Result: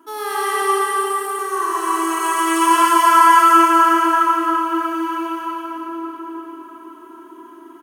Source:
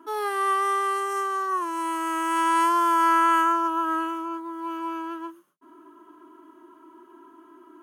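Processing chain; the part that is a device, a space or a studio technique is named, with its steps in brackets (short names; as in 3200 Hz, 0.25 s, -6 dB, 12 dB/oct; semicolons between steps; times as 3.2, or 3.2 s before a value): 0.62–1.39 elliptic band-stop 300–8800 Hz; high shelf 3100 Hz +9.5 dB; cave (echo 0.338 s -8.5 dB; reverb RT60 5.2 s, pre-delay 76 ms, DRR -7.5 dB); gain -1 dB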